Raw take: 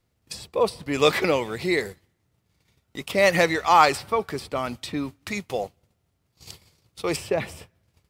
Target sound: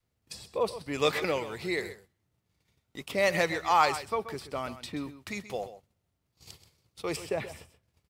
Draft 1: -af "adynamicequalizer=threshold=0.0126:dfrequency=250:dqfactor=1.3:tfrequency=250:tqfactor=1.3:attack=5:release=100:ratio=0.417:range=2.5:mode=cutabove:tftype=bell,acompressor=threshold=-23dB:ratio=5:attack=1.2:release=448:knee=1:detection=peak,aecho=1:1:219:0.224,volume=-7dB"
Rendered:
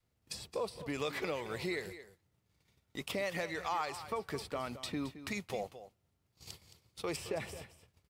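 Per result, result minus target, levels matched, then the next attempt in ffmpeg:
compressor: peak gain reduction +14 dB; echo 89 ms late
-af "adynamicequalizer=threshold=0.0126:dfrequency=250:dqfactor=1.3:tfrequency=250:tqfactor=1.3:attack=5:release=100:ratio=0.417:range=2.5:mode=cutabove:tftype=bell,aecho=1:1:219:0.224,volume=-7dB"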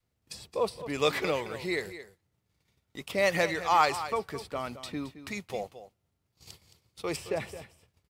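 echo 89 ms late
-af "adynamicequalizer=threshold=0.0126:dfrequency=250:dqfactor=1.3:tfrequency=250:tqfactor=1.3:attack=5:release=100:ratio=0.417:range=2.5:mode=cutabove:tftype=bell,aecho=1:1:130:0.224,volume=-7dB"

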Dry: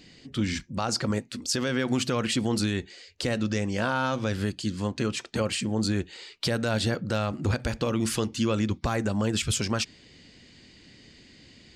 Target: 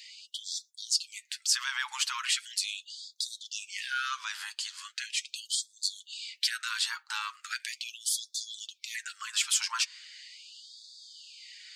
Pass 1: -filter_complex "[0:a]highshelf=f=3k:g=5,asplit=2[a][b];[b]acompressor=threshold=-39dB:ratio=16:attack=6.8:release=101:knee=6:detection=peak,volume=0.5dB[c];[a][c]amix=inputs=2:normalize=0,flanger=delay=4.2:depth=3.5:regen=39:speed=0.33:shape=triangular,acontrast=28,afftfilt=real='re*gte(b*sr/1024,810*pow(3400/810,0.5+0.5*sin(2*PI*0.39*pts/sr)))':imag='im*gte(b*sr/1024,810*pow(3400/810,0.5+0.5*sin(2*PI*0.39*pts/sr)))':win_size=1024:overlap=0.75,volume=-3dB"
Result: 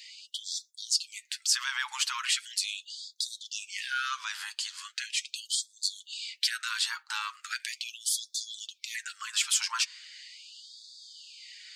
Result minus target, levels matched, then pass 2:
compressor: peak gain reduction -7.5 dB
-filter_complex "[0:a]highshelf=f=3k:g=5,asplit=2[a][b];[b]acompressor=threshold=-47dB:ratio=16:attack=6.8:release=101:knee=6:detection=peak,volume=0.5dB[c];[a][c]amix=inputs=2:normalize=0,flanger=delay=4.2:depth=3.5:regen=39:speed=0.33:shape=triangular,acontrast=28,afftfilt=real='re*gte(b*sr/1024,810*pow(3400/810,0.5+0.5*sin(2*PI*0.39*pts/sr)))':imag='im*gte(b*sr/1024,810*pow(3400/810,0.5+0.5*sin(2*PI*0.39*pts/sr)))':win_size=1024:overlap=0.75,volume=-3dB"

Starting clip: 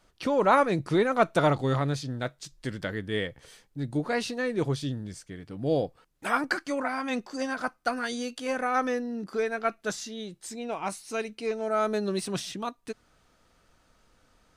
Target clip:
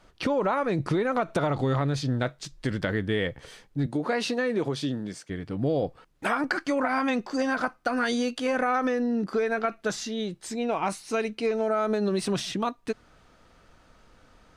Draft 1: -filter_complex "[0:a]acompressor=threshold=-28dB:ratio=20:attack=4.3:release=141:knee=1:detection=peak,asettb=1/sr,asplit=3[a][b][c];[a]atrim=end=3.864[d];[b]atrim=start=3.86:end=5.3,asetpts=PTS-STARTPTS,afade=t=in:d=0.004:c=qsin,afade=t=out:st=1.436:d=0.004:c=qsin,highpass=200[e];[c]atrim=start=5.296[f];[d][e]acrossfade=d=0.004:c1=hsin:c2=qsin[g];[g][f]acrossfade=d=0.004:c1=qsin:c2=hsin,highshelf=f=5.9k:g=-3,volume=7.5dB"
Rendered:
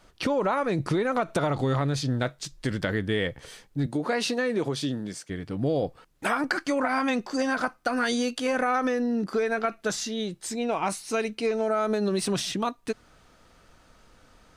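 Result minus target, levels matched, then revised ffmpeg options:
8000 Hz band +4.0 dB
-filter_complex "[0:a]acompressor=threshold=-28dB:ratio=20:attack=4.3:release=141:knee=1:detection=peak,asettb=1/sr,asplit=3[a][b][c];[a]atrim=end=3.864[d];[b]atrim=start=3.86:end=5.3,asetpts=PTS-STARTPTS,afade=t=in:d=0.004:c=qsin,afade=t=out:st=1.436:d=0.004:c=qsin,highpass=200[e];[c]atrim=start=5.296[f];[d][e]acrossfade=d=0.004:c1=hsin:c2=qsin[g];[g][f]acrossfade=d=0.004:c1=qsin:c2=hsin,highshelf=f=5.9k:g=-10.5,volume=7.5dB"

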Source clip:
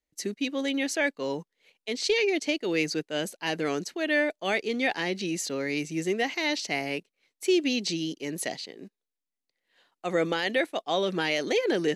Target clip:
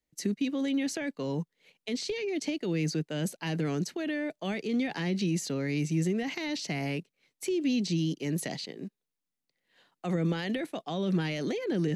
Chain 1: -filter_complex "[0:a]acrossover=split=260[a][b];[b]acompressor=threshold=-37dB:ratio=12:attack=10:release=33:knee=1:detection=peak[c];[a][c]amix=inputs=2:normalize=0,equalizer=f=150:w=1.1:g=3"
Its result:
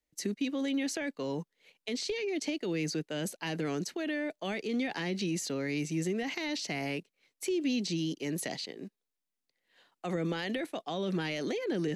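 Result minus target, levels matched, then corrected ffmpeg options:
125 Hz band -4.5 dB
-filter_complex "[0:a]acrossover=split=260[a][b];[b]acompressor=threshold=-37dB:ratio=12:attack=10:release=33:knee=1:detection=peak[c];[a][c]amix=inputs=2:normalize=0,equalizer=f=150:w=1.1:g=10.5"

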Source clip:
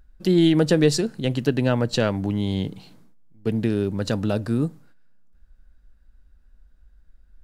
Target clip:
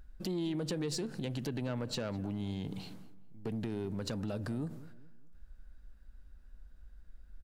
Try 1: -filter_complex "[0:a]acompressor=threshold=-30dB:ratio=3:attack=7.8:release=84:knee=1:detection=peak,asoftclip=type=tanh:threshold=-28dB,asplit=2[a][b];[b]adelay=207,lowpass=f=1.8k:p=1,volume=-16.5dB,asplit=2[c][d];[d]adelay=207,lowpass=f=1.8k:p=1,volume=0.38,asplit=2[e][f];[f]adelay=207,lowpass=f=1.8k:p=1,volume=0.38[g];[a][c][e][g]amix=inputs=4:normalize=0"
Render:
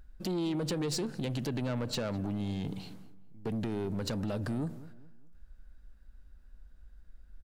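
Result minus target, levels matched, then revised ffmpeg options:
compressor: peak gain reduction -5 dB
-filter_complex "[0:a]acompressor=threshold=-37.5dB:ratio=3:attack=7.8:release=84:knee=1:detection=peak,asoftclip=type=tanh:threshold=-28dB,asplit=2[a][b];[b]adelay=207,lowpass=f=1.8k:p=1,volume=-16.5dB,asplit=2[c][d];[d]adelay=207,lowpass=f=1.8k:p=1,volume=0.38,asplit=2[e][f];[f]adelay=207,lowpass=f=1.8k:p=1,volume=0.38[g];[a][c][e][g]amix=inputs=4:normalize=0"

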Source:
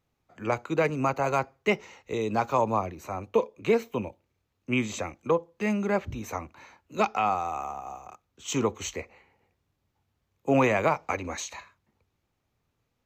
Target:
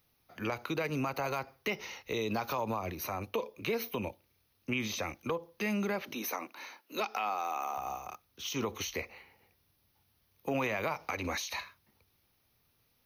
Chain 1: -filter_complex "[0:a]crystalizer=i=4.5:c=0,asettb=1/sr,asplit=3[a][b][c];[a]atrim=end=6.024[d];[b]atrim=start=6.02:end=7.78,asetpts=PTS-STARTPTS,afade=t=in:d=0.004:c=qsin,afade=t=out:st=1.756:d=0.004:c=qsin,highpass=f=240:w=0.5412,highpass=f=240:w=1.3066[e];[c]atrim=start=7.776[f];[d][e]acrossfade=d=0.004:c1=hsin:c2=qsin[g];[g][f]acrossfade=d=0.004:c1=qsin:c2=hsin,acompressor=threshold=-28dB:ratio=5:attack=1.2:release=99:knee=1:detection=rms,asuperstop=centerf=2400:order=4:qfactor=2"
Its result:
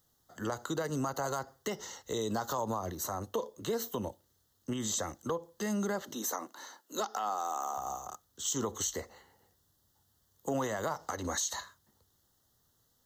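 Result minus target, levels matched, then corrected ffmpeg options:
8000 Hz band +8.5 dB
-filter_complex "[0:a]crystalizer=i=4.5:c=0,asettb=1/sr,asplit=3[a][b][c];[a]atrim=end=6.024[d];[b]atrim=start=6.02:end=7.78,asetpts=PTS-STARTPTS,afade=t=in:d=0.004:c=qsin,afade=t=out:st=1.756:d=0.004:c=qsin,highpass=f=240:w=0.5412,highpass=f=240:w=1.3066[e];[c]atrim=start=7.776[f];[d][e]acrossfade=d=0.004:c1=hsin:c2=qsin[g];[g][f]acrossfade=d=0.004:c1=qsin:c2=hsin,acompressor=threshold=-28dB:ratio=5:attack=1.2:release=99:knee=1:detection=rms,asuperstop=centerf=7500:order=4:qfactor=2"

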